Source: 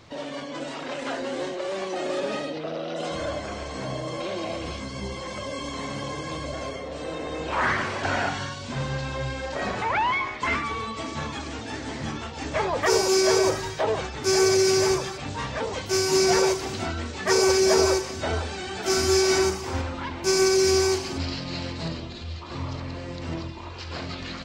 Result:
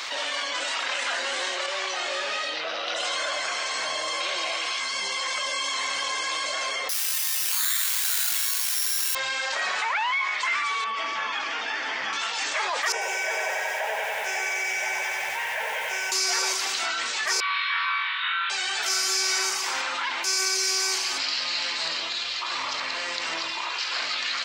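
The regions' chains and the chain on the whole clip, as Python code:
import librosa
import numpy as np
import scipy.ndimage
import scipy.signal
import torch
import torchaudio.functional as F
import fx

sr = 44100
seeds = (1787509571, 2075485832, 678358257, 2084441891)

y = fx.chain(x, sr, fx.lowpass(hz=7100.0, slope=12),
    fx.detune_double(cents=13), at=(1.66, 2.87))
y = fx.chain(y, sr, fx.bass_treble(bass_db=-9, treble_db=-2),
    fx.notch(hz=540.0, q=10.0), at=(4.5, 4.93))
y = fx.chain(y, sr, fx.tone_stack(knobs='5-5-5'),
    fx.resample_bad(factor=8, down='none', up='zero_stuff'),
    fx.env_flatten(amount_pct=50), at=(6.89, 9.15))
y = fx.chain(y, sr, fx.air_absorb(metres=220.0),
    fx.notch(hz=4000.0, q=6.5), at=(10.84, 12.13))
y = fx.chain(y, sr, fx.spacing_loss(db_at_10k=22),
    fx.fixed_phaser(hz=1200.0, stages=6),
    fx.echo_crushed(ms=93, feedback_pct=80, bits=9, wet_db=-4), at=(12.92, 16.12))
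y = fx.chain(y, sr, fx.cheby1_bandpass(low_hz=1000.0, high_hz=3800.0, order=5),
    fx.room_flutter(wall_m=3.9, rt60_s=0.54), at=(17.4, 18.5))
y = scipy.signal.sosfilt(scipy.signal.butter(2, 1400.0, 'highpass', fs=sr, output='sos'), y)
y = fx.env_flatten(y, sr, amount_pct=70)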